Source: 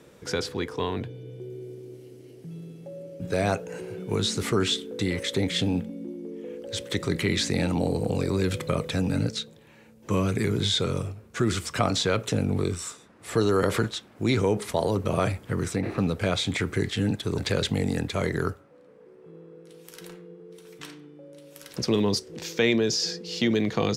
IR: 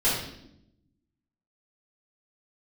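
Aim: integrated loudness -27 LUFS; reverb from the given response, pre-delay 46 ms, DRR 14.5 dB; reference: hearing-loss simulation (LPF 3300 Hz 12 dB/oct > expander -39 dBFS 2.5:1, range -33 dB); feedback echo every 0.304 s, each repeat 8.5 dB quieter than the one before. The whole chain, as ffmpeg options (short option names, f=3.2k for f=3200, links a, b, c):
-filter_complex "[0:a]aecho=1:1:304|608|912|1216:0.376|0.143|0.0543|0.0206,asplit=2[a][b];[1:a]atrim=start_sample=2205,adelay=46[c];[b][c]afir=irnorm=-1:irlink=0,volume=-27.5dB[d];[a][d]amix=inputs=2:normalize=0,lowpass=3.3k,agate=range=-33dB:threshold=-39dB:ratio=2.5"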